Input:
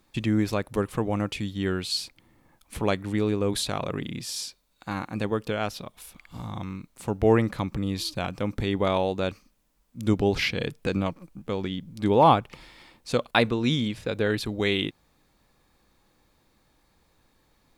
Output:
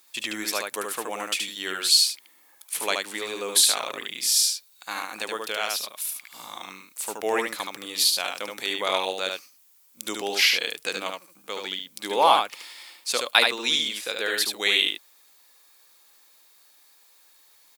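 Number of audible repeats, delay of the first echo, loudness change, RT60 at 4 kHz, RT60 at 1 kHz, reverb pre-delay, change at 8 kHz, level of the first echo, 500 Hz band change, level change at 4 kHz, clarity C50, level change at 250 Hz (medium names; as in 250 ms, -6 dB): 1, 74 ms, +2.5 dB, no reverb, no reverb, no reverb, +15.0 dB, -4.0 dB, -4.0 dB, +10.0 dB, no reverb, -13.0 dB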